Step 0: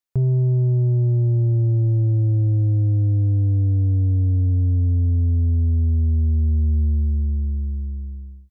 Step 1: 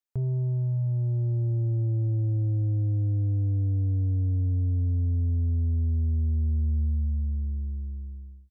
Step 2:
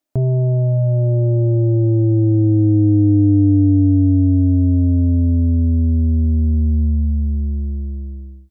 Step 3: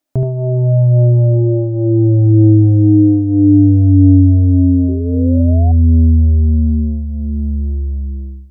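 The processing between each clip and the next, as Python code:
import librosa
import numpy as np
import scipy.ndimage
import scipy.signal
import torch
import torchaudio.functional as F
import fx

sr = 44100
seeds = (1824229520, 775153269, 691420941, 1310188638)

y1 = fx.peak_eq(x, sr, hz=160.0, db=-7.0, octaves=0.45)
y1 = fx.notch(y1, sr, hz=370.0, q=12.0)
y1 = y1 * 10.0 ** (-6.5 / 20.0)
y2 = fx.small_body(y1, sr, hz=(300.0, 610.0), ring_ms=45, db=18)
y2 = y2 * 10.0 ** (8.5 / 20.0)
y3 = y2 + 10.0 ** (-5.5 / 20.0) * np.pad(y2, (int(74 * sr / 1000.0), 0))[:len(y2)]
y3 = fx.spec_paint(y3, sr, seeds[0], shape='rise', start_s=4.88, length_s=0.84, low_hz=370.0, high_hz=740.0, level_db=-29.0)
y3 = y3 * 10.0 ** (3.0 / 20.0)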